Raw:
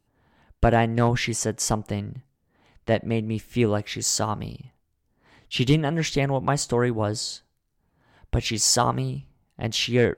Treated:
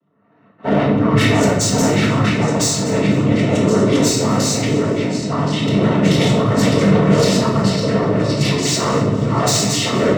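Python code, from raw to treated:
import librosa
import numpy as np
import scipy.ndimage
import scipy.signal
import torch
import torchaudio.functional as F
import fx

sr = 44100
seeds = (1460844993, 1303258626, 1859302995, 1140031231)

y = fx.reverse_delay_fb(x, sr, ms=536, feedback_pct=59, wet_db=0)
y = fx.env_lowpass(y, sr, base_hz=1700.0, full_db=-16.0)
y = fx.high_shelf(y, sr, hz=3800.0, db=-6.5)
y = fx.transient(y, sr, attack_db=-10, sustain_db=10)
y = fx.noise_vocoder(y, sr, seeds[0], bands=12)
y = 10.0 ** (-20.5 / 20.0) * np.tanh(y / 10.0 ** (-20.5 / 20.0))
y = fx.notch_comb(y, sr, f0_hz=820.0)
y = fx.echo_feedback(y, sr, ms=248, feedback_pct=47, wet_db=-19)
y = fx.room_shoebox(y, sr, seeds[1], volume_m3=370.0, walls='mixed', distance_m=1.6)
y = F.gain(torch.from_numpy(y), 6.0).numpy()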